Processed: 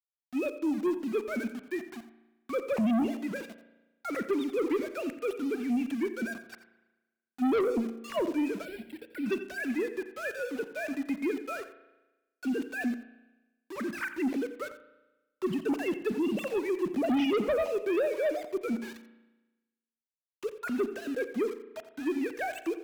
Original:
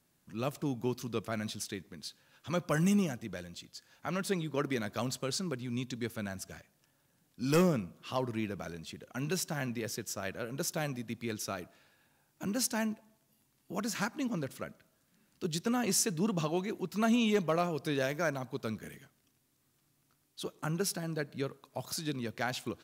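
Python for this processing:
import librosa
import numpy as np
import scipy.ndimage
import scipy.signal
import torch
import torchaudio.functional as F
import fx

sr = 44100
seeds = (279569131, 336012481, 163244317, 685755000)

y = fx.sine_speech(x, sr)
y = fx.env_phaser(y, sr, low_hz=590.0, high_hz=1700.0, full_db=-27.0)
y = np.where(np.abs(y) >= 10.0 ** (-49.0 / 20.0), y, 0.0)
y = fx.cheby_harmonics(y, sr, harmonics=(5, 8), levels_db=(-11, -36), full_scale_db=-15.5)
y = y + 10.0 ** (-14.0 / 20.0) * np.pad(y, (int(87 * sr / 1000.0), 0))[:len(y)]
y = fx.rev_spring(y, sr, rt60_s=1.1, pass_ms=(35,), chirp_ms=75, drr_db=12.5)
y = fx.fold_sine(y, sr, drive_db=5, ceiling_db=-14.5)
y = fx.fixed_phaser(y, sr, hz=2800.0, stages=4, at=(8.65, 9.26))
y = y * 10.0 ** (-9.0 / 20.0)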